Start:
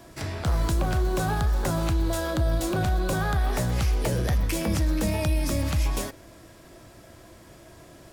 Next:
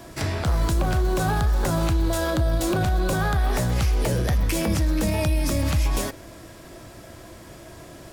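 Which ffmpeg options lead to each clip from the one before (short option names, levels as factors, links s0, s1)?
-af "alimiter=limit=0.0944:level=0:latency=1:release=72,volume=2"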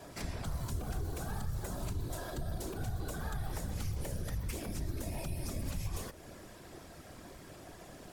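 -filter_complex "[0:a]afftfilt=real='hypot(re,im)*cos(2*PI*random(0))':imag='hypot(re,im)*sin(2*PI*random(1))':win_size=512:overlap=0.75,acrossover=split=82|6000[s0][s1][s2];[s0]acompressor=threshold=0.02:ratio=4[s3];[s1]acompressor=threshold=0.01:ratio=4[s4];[s2]acompressor=threshold=0.00501:ratio=4[s5];[s3][s4][s5]amix=inputs=3:normalize=0,volume=0.794"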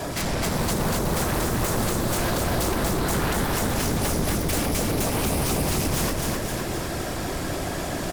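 -af "aeval=exprs='0.0562*sin(PI/2*5.62*val(0)/0.0562)':c=same,aecho=1:1:257|514|771|1028|1285|1542|1799|2056:0.708|0.396|0.222|0.124|0.0696|0.039|0.0218|0.0122,volume=1.26"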